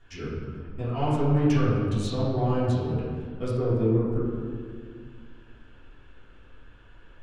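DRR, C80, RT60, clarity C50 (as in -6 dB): -12.0 dB, 0.5 dB, 2.0 s, -1.5 dB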